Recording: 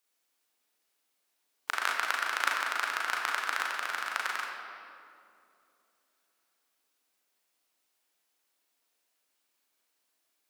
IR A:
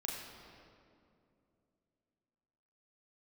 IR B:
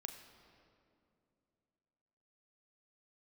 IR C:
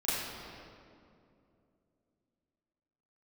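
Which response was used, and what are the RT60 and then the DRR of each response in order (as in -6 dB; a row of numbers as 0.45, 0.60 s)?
A; 2.6, 2.6, 2.6 s; -2.5, 5.5, -12.5 dB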